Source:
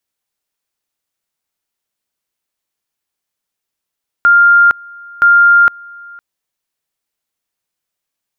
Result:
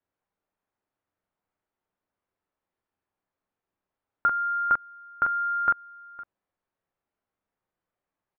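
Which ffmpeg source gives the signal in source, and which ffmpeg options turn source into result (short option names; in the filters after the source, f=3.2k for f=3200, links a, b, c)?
-f lavfi -i "aevalsrc='pow(10,(-4-26.5*gte(mod(t,0.97),0.46))/20)*sin(2*PI*1400*t)':d=1.94:s=44100"
-af "alimiter=limit=-11dB:level=0:latency=1:release=58,lowpass=1.3k,aecho=1:1:11|34|44:0.282|0.335|0.631"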